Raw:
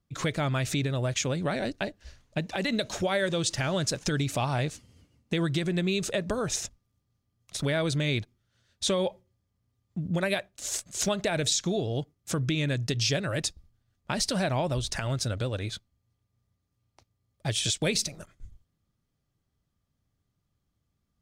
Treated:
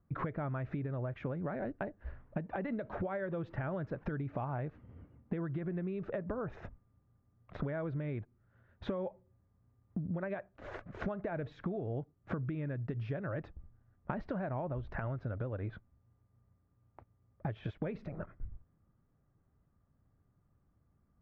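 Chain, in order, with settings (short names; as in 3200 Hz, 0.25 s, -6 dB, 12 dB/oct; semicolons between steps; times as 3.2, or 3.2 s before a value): LPF 1600 Hz 24 dB/oct; compressor 10:1, threshold -40 dBFS, peak gain reduction 17 dB; gain +5.5 dB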